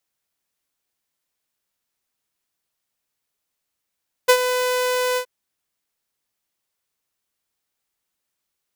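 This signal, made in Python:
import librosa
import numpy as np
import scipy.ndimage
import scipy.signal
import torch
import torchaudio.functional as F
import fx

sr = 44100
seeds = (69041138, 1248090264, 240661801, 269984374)

y = fx.adsr_tone(sr, wave='saw', hz=501.0, attack_ms=16.0, decay_ms=71.0, sustain_db=-10.5, held_s=0.89, release_ms=82.0, level_db=-6.0)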